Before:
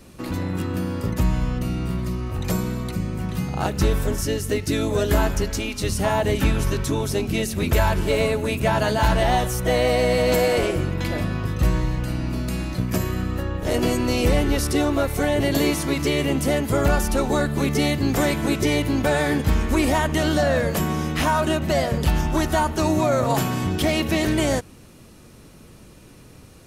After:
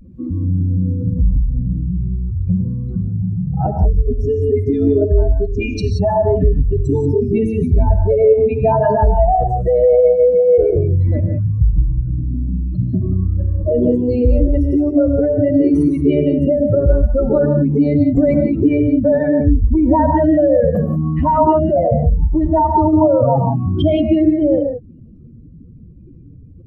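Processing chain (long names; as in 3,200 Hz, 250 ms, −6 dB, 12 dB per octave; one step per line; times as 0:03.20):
expanding power law on the bin magnitudes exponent 3.4
reverb whose tail is shaped and stops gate 200 ms rising, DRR 4 dB
level +6.5 dB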